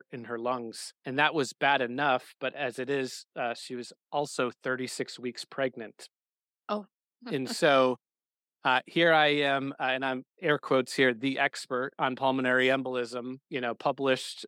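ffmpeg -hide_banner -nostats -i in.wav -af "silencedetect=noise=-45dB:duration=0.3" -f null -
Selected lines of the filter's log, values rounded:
silence_start: 6.06
silence_end: 6.69 | silence_duration: 0.63
silence_start: 6.84
silence_end: 7.23 | silence_duration: 0.40
silence_start: 7.96
silence_end: 8.65 | silence_duration: 0.69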